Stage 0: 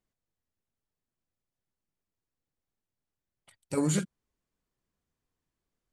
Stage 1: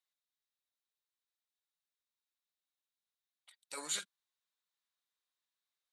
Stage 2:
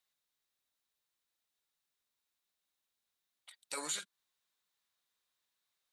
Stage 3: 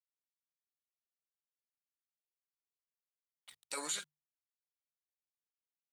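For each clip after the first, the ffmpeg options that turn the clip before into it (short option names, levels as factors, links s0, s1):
-af "highpass=1100,equalizer=f=3800:t=o:w=0.3:g=11.5,volume=0.668"
-af "acompressor=threshold=0.00708:ratio=3,volume=2"
-af "aeval=exprs='val(0)*gte(abs(val(0)),0.001)':c=same,bandreject=f=50:t=h:w=6,bandreject=f=100:t=h:w=6,bandreject=f=150:t=h:w=6"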